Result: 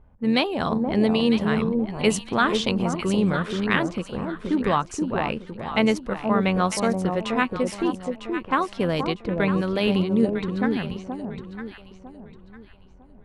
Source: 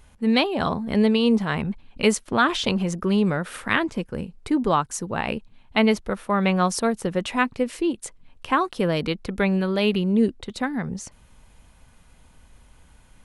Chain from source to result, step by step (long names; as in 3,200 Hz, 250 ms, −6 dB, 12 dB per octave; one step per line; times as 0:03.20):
low-pass that shuts in the quiet parts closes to 830 Hz, open at −19 dBFS
delay that swaps between a low-pass and a high-pass 476 ms, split 940 Hz, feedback 53%, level −4 dB
amplitude modulation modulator 88 Hz, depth 20%